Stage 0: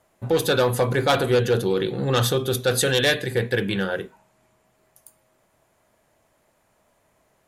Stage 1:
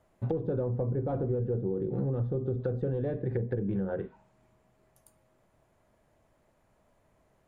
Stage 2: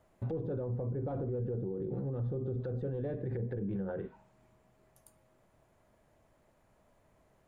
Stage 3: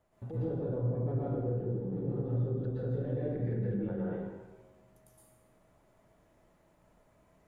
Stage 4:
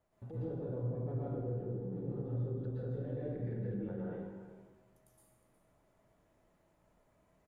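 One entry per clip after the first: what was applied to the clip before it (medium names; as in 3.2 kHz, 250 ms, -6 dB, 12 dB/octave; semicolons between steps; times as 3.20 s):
low-pass that closes with the level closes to 510 Hz, closed at -19.5 dBFS; tilt EQ -2 dB/octave; compression 10:1, threshold -21 dBFS, peak gain reduction 8.5 dB; trim -5.5 dB
peak limiter -29 dBFS, peak gain reduction 10 dB
plate-style reverb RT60 1.2 s, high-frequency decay 0.75×, pre-delay 105 ms, DRR -7.5 dB; trim -6.5 dB
delay 361 ms -14 dB; trim -5.5 dB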